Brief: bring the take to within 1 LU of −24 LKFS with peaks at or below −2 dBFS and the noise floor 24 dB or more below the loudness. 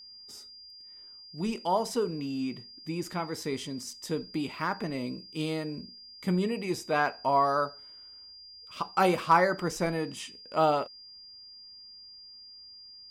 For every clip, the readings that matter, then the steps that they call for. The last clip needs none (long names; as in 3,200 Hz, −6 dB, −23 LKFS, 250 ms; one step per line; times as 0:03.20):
interfering tone 4,800 Hz; level of the tone −47 dBFS; integrated loudness −30.0 LKFS; sample peak −10.5 dBFS; target loudness −24.0 LKFS
→ notch filter 4,800 Hz, Q 30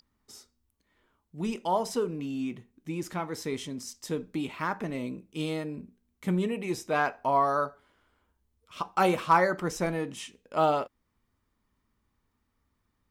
interfering tone none found; integrated loudness −30.0 LKFS; sample peak −10.5 dBFS; target loudness −24.0 LKFS
→ level +6 dB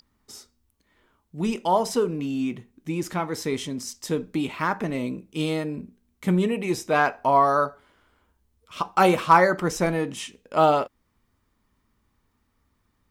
integrated loudness −24.0 LKFS; sample peak −4.5 dBFS; background noise floor −71 dBFS